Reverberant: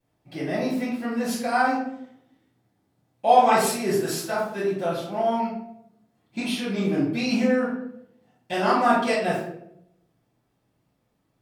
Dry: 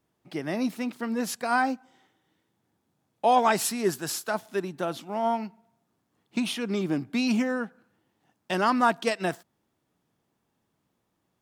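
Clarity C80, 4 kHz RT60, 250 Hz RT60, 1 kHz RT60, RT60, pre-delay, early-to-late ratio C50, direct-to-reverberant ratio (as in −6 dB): 5.5 dB, 0.45 s, 0.95 s, 0.60 s, 0.75 s, 3 ms, 2.0 dB, −12.0 dB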